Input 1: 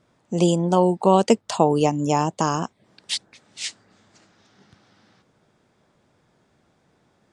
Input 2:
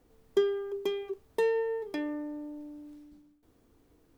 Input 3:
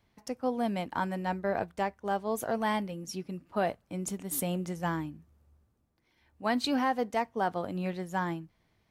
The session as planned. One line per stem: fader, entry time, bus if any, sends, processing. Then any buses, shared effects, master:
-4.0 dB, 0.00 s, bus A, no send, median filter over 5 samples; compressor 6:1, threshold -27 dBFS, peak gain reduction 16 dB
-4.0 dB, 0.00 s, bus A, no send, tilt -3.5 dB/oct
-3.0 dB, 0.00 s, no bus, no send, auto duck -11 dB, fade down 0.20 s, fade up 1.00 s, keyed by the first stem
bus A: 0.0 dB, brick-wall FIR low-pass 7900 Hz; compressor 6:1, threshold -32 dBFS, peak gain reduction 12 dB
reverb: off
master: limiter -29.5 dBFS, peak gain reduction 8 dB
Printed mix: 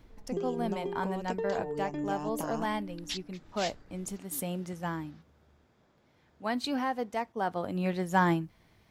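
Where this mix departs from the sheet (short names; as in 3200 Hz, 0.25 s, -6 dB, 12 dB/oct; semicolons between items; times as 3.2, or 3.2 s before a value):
stem 3 -3.0 dB -> +8.0 dB; master: missing limiter -29.5 dBFS, peak gain reduction 8 dB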